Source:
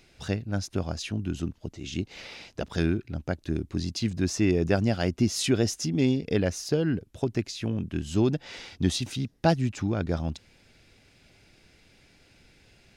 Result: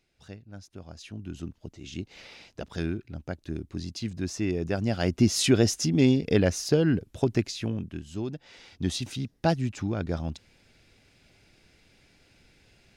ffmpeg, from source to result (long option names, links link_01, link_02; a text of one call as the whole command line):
ffmpeg -i in.wav -af "volume=10.5dB,afade=type=in:start_time=0.79:duration=0.77:silence=0.316228,afade=type=in:start_time=4.76:duration=0.5:silence=0.398107,afade=type=out:start_time=7.37:duration=0.68:silence=0.237137,afade=type=in:start_time=8.58:duration=0.42:silence=0.421697" out.wav